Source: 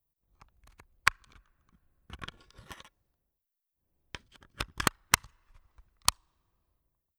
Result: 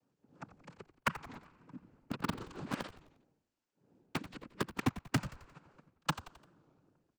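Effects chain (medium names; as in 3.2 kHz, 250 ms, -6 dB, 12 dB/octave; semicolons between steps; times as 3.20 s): noise-vocoded speech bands 8; peaking EQ 260 Hz +13.5 dB 2.3 oct; reverse; compression 4:1, threshold -41 dBFS, peak gain reduction 20.5 dB; reverse; treble shelf 3.8 kHz -8 dB; in parallel at -7 dB: bit crusher 6-bit; on the sum: frequency-shifting echo 88 ms, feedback 47%, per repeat -71 Hz, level -14.5 dB; warped record 33 1/3 rpm, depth 160 cents; trim +5.5 dB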